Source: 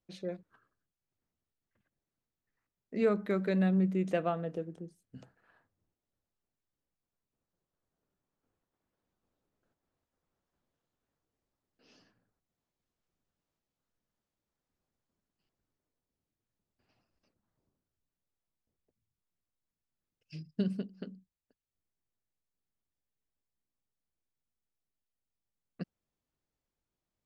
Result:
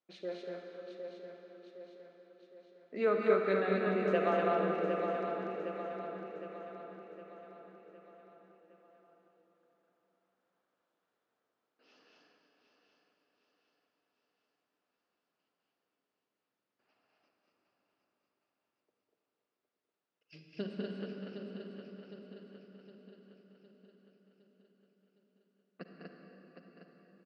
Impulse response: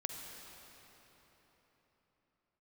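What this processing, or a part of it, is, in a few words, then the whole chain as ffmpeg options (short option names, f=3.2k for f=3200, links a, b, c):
station announcement: -filter_complex "[0:a]highpass=350,lowpass=4k,equalizer=f=1.3k:t=o:w=0.38:g=4,aecho=1:1:201.2|242:0.501|0.708[a];[1:a]atrim=start_sample=2205[b];[a][b]afir=irnorm=-1:irlink=0,aecho=1:1:761|1522|2283|3044|3805|4566:0.398|0.207|0.108|0.056|0.0291|0.0151,volume=1.5dB"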